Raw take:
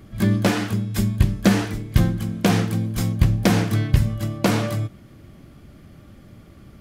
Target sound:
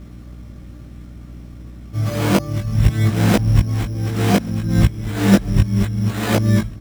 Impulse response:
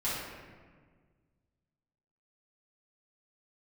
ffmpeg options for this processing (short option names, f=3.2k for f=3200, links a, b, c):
-filter_complex "[0:a]areverse,acrossover=split=240|4600[a][b][c];[c]acompressor=threshold=-46dB:ratio=6[d];[a][b][d]amix=inputs=3:normalize=0,acrusher=samples=8:mix=1:aa=0.000001,flanger=delay=18.5:depth=2:speed=0.63,aeval=exprs='val(0)+0.00891*(sin(2*PI*60*n/s)+sin(2*PI*2*60*n/s)/2+sin(2*PI*3*60*n/s)/3+sin(2*PI*4*60*n/s)/4+sin(2*PI*5*60*n/s)/5)':c=same,asplit=2[e][f];[f]aecho=0:1:1134:0.0631[g];[e][g]amix=inputs=2:normalize=0,volume=5.5dB"